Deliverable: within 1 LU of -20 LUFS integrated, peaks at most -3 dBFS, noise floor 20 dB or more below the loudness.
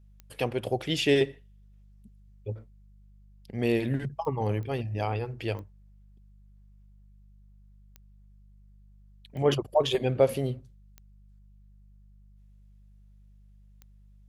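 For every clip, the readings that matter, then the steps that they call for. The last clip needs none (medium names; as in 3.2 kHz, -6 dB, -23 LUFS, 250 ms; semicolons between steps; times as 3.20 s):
clicks found 8; hum 50 Hz; highest harmonic 200 Hz; hum level -52 dBFS; loudness -29.0 LUFS; peak level -10.0 dBFS; loudness target -20.0 LUFS
-> de-click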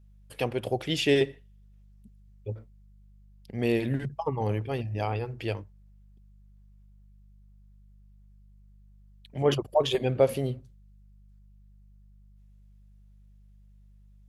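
clicks found 0; hum 50 Hz; highest harmonic 200 Hz; hum level -52 dBFS
-> de-hum 50 Hz, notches 4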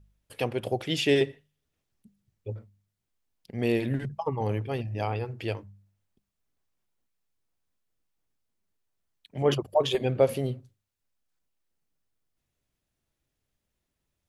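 hum not found; loudness -28.5 LUFS; peak level -10.0 dBFS; loudness target -20.0 LUFS
-> trim +8.5 dB; peak limiter -3 dBFS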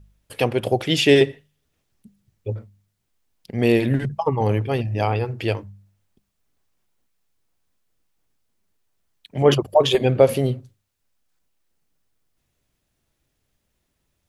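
loudness -20.0 LUFS; peak level -3.0 dBFS; noise floor -74 dBFS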